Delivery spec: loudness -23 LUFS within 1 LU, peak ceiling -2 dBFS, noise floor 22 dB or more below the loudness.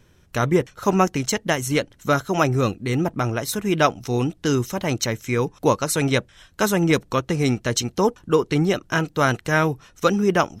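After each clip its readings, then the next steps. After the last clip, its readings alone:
loudness -22.0 LUFS; peak level -3.5 dBFS; loudness target -23.0 LUFS
-> trim -1 dB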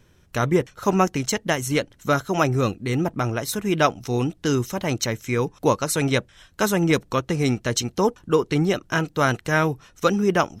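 loudness -23.0 LUFS; peak level -4.5 dBFS; noise floor -57 dBFS

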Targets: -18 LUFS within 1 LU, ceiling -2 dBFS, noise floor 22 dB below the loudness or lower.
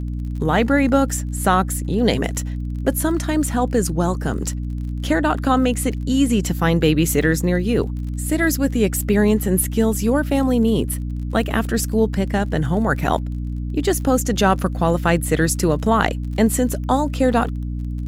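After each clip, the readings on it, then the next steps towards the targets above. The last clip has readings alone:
tick rate 32 per s; hum 60 Hz; highest harmonic 300 Hz; hum level -23 dBFS; loudness -19.5 LUFS; peak level -2.0 dBFS; loudness target -18.0 LUFS
-> de-click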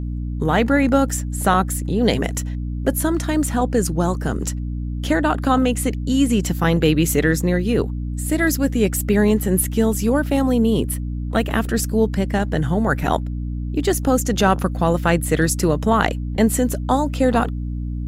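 tick rate 0.22 per s; hum 60 Hz; highest harmonic 300 Hz; hum level -23 dBFS
-> hum notches 60/120/180/240/300 Hz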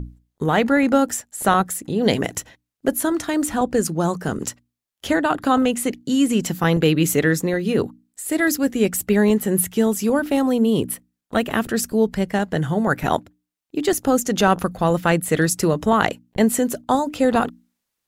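hum not found; loudness -20.5 LUFS; peak level -1.5 dBFS; loudness target -18.0 LUFS
-> trim +2.5 dB; peak limiter -2 dBFS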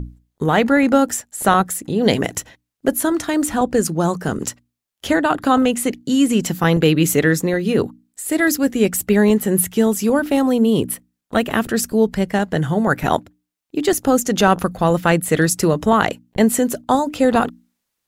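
loudness -18.0 LUFS; peak level -2.0 dBFS; noise floor -78 dBFS

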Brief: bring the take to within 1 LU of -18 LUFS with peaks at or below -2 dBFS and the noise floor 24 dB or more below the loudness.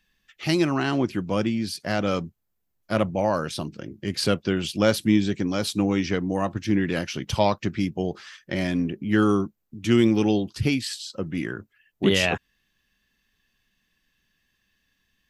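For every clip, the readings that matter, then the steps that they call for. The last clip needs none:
loudness -24.5 LUFS; peak level -5.0 dBFS; loudness target -18.0 LUFS
-> trim +6.5 dB; peak limiter -2 dBFS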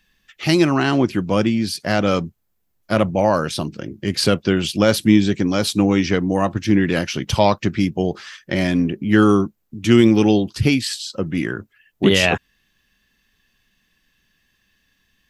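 loudness -18.5 LUFS; peak level -2.0 dBFS; noise floor -68 dBFS

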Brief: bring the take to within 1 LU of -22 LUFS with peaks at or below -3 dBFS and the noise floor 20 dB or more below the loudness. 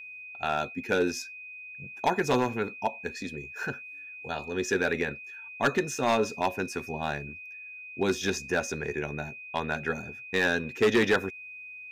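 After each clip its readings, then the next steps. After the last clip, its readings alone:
clipped samples 0.6%; clipping level -17.5 dBFS; steady tone 2.5 kHz; tone level -41 dBFS; loudness -29.5 LUFS; peak level -17.5 dBFS; loudness target -22.0 LUFS
-> clip repair -17.5 dBFS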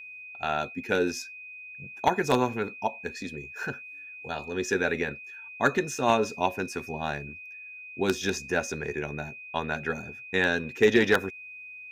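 clipped samples 0.0%; steady tone 2.5 kHz; tone level -41 dBFS
-> band-stop 2.5 kHz, Q 30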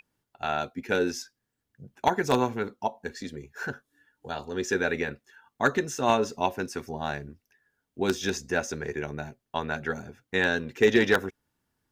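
steady tone not found; loudness -28.5 LUFS; peak level -8.0 dBFS; loudness target -22.0 LUFS
-> trim +6.5 dB; peak limiter -3 dBFS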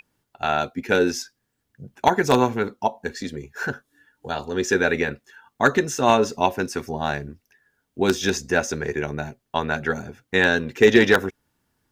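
loudness -22.5 LUFS; peak level -3.0 dBFS; noise floor -76 dBFS

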